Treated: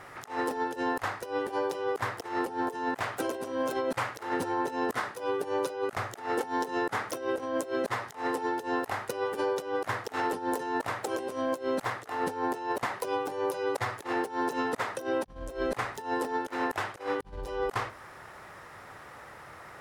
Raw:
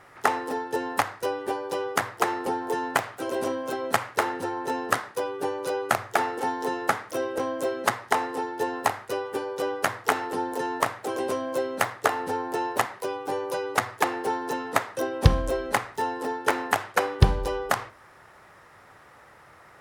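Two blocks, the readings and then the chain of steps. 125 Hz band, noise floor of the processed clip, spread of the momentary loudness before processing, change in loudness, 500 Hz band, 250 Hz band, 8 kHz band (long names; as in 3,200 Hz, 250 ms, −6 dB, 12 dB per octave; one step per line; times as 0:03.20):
−14.0 dB, −49 dBFS, 5 LU, −4.5 dB, −3.0 dB, −1.5 dB, −8.5 dB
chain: compressor whose output falls as the input rises −32 dBFS, ratio −0.5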